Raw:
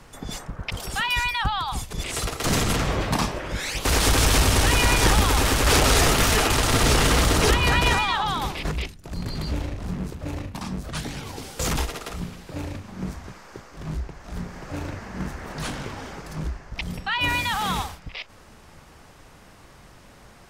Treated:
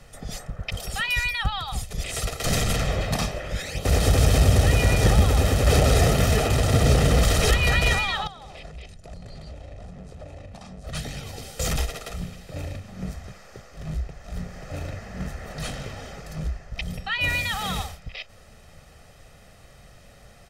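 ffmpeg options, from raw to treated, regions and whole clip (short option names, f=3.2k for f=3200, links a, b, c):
-filter_complex "[0:a]asettb=1/sr,asplit=3[a][b][c];[a]atrim=end=3.624[d];[b]atrim=start=3.62:end=7.23,asetpts=PTS-STARTPTS,afade=t=in:d=0.004:c=qsin,afade=t=out:st=3.606:d=0.004:c=qsin,highpass=67,tiltshelf=f=810:g=6[e];[c]atrim=start=7.226[f];[d][e]acrossfade=d=0.004:c1=hsin:c2=qsin[g];[g][f]acrossfade=d=0.004:c1=qsin:c2=hsin,asettb=1/sr,asplit=3[h][i][j];[h]atrim=end=8.274[k];[i]atrim=start=8.27:end=10.87,asetpts=PTS-STARTPTS,afade=t=in:d=0.004:c=qsin,afade=t=out:st=2.596:d=0.004:c=qsin,lowpass=f=9.9k:w=0.5412,lowpass=f=9.9k:w=1.3066,equalizer=f=680:t=o:w=1.4:g=7,acompressor=threshold=-35dB:ratio=20:attack=3.2:release=140:knee=1:detection=peak[l];[j]atrim=start=10.866[m];[k][l]acrossfade=d=0.004:c1=hsin:c2=qsin[n];[n][m]acrossfade=d=0.004:c1=qsin:c2=hsin,equalizer=f=1.1k:t=o:w=0.54:g=-7.5,aecho=1:1:1.6:0.55,volume=-2dB"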